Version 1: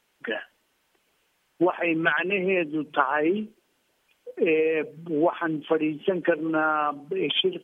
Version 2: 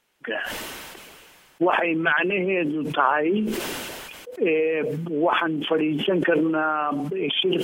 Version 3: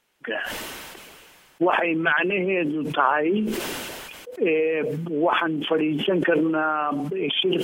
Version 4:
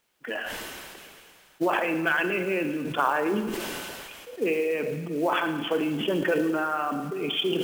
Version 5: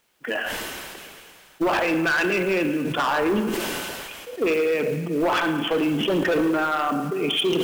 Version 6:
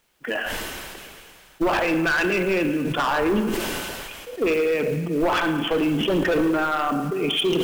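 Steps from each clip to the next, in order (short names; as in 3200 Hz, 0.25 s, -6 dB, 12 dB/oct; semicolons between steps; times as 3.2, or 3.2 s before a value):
sustainer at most 25 dB/s
nothing audible
thinning echo 0.111 s, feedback 73%, high-pass 210 Hz, level -16 dB; companded quantiser 6-bit; Schroeder reverb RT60 0.78 s, combs from 31 ms, DRR 9.5 dB; gain -4.5 dB
hard clip -23 dBFS, distortion -12 dB; gain +5.5 dB
low shelf 73 Hz +12 dB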